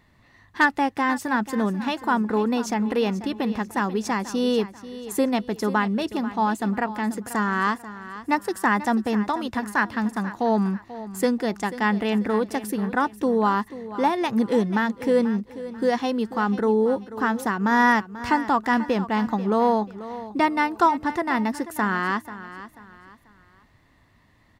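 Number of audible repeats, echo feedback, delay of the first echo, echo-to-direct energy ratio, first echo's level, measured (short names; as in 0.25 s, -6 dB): 3, 34%, 0.488 s, -14.0 dB, -14.5 dB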